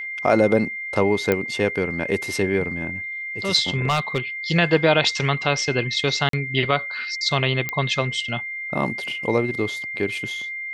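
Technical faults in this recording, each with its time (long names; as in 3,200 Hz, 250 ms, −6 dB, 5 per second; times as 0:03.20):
whistle 2,100 Hz −28 dBFS
0:01.32: click −7 dBFS
0:03.85–0:04.19: clipping −14.5 dBFS
0:06.29–0:06.33: drop-out 43 ms
0:07.69: click −10 dBFS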